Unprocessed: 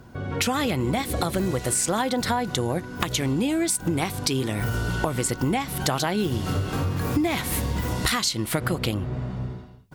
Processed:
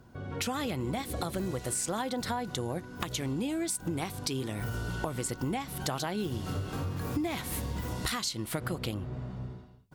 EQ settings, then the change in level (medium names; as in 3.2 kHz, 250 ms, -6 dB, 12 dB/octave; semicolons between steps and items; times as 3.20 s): peaking EQ 2.1 kHz -2 dB; -8.5 dB